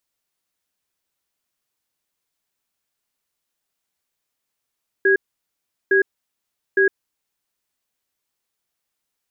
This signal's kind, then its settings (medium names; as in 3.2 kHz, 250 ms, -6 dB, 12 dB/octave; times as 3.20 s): cadence 389 Hz, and 1.65 kHz, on 0.11 s, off 0.75 s, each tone -15 dBFS 2.19 s